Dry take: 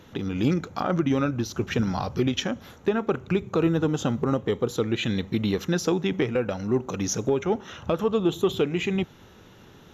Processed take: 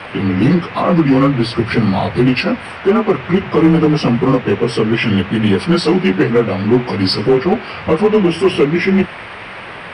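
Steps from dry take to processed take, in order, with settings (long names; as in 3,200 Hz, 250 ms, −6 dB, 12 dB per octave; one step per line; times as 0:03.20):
partials spread apart or drawn together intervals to 92%
in parallel at +1 dB: hard clipping −22 dBFS, distortion −13 dB
on the sum: mains-hum notches 60/120 Hz
noise in a band 430–2,600 Hz −39 dBFS
level +8 dB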